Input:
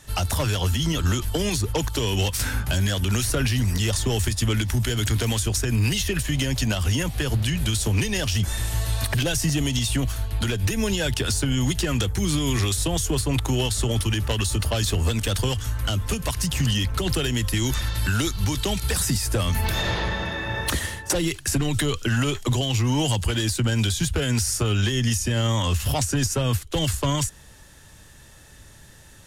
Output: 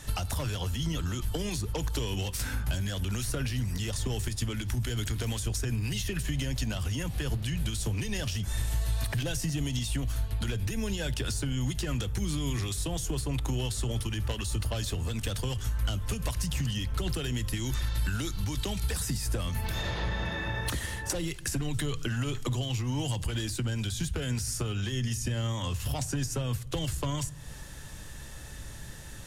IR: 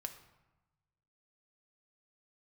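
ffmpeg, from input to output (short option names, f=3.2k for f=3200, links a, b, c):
-filter_complex "[0:a]acompressor=threshold=-34dB:ratio=6,asplit=2[a][b];[1:a]atrim=start_sample=2205,lowshelf=f=200:g=11.5[c];[b][c]afir=irnorm=-1:irlink=0,volume=-5.5dB[d];[a][d]amix=inputs=2:normalize=0"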